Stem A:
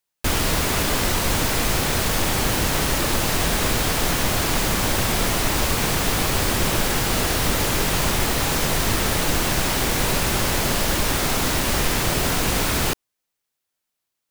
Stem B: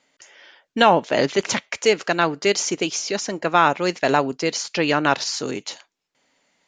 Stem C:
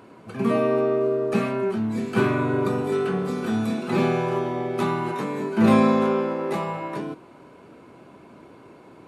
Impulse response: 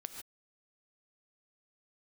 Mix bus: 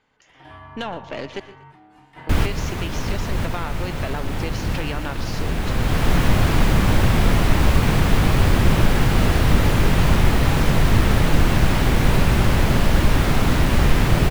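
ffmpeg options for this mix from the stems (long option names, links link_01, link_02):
-filter_complex "[0:a]bass=frequency=250:gain=9,treble=frequency=4000:gain=-3,adelay=2050,volume=0.5dB[link_01];[1:a]equalizer=frequency=3300:width=1.2:gain=4.5,acompressor=threshold=-18dB:ratio=6,aeval=exprs='(tanh(5.62*val(0)+0.6)-tanh(0.6))/5.62':channel_layout=same,volume=-7dB,asplit=3[link_02][link_03][link_04];[link_02]atrim=end=1.4,asetpts=PTS-STARTPTS,afade=type=out:start_time=1.396:duration=0.004:curve=hsin[link_05];[link_03]atrim=start=1.4:end=2.27,asetpts=PTS-STARTPTS,volume=0[link_06];[link_04]atrim=start=2.27,asetpts=PTS-STARTPTS,afade=type=in:duration=0.004:curve=hsin[link_07];[link_05][link_06][link_07]concat=n=3:v=0:a=1,asplit=4[link_08][link_09][link_10][link_11];[link_09]volume=-7dB[link_12];[link_10]volume=-14.5dB[link_13];[2:a]highpass=frequency=740:poles=1,aeval=exprs='val(0)*sin(2*PI*530*n/s)':channel_layout=same,volume=-12dB[link_14];[link_11]apad=whole_len=721225[link_15];[link_01][link_15]sidechaincompress=threshold=-37dB:ratio=8:attack=38:release=835[link_16];[3:a]atrim=start_sample=2205[link_17];[link_12][link_17]afir=irnorm=-1:irlink=0[link_18];[link_13]aecho=0:1:119|238|357|476|595:1|0.33|0.109|0.0359|0.0119[link_19];[link_16][link_08][link_14][link_18][link_19]amix=inputs=5:normalize=0,bass=frequency=250:gain=0,treble=frequency=4000:gain=-8"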